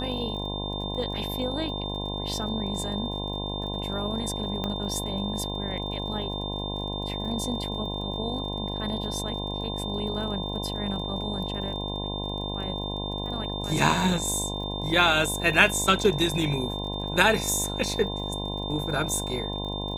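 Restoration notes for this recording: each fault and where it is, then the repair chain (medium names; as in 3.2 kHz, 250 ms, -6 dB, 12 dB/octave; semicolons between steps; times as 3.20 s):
buzz 50 Hz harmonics 21 -33 dBFS
crackle 39 per s -38 dBFS
whine 3.6 kHz -34 dBFS
4.64 s: pop -16 dBFS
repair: de-click; band-stop 3.6 kHz, Q 30; de-hum 50 Hz, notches 21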